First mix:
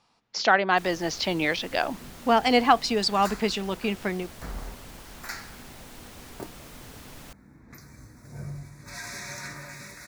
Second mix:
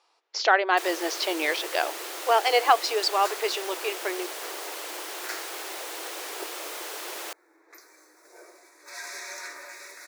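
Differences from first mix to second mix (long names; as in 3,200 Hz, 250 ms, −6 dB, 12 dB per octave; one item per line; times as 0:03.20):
first sound +11.5 dB
master: add linear-phase brick-wall high-pass 310 Hz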